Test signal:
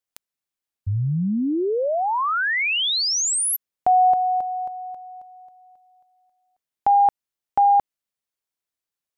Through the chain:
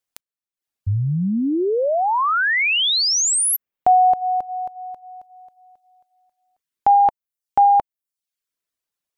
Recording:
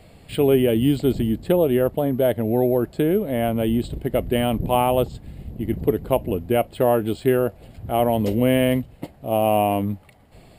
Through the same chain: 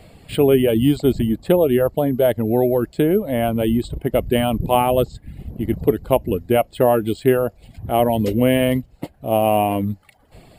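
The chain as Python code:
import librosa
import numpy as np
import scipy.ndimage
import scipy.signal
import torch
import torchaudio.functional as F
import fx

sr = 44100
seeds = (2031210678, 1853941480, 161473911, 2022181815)

y = fx.dereverb_blind(x, sr, rt60_s=0.58)
y = y * librosa.db_to_amplitude(3.5)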